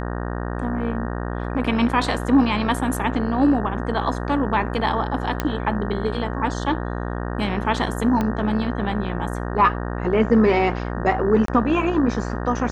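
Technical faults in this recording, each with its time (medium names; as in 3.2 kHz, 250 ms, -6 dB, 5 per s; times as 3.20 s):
buzz 60 Hz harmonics 31 -27 dBFS
5.40 s: pop -7 dBFS
8.21 s: pop -11 dBFS
11.46–11.48 s: dropout 23 ms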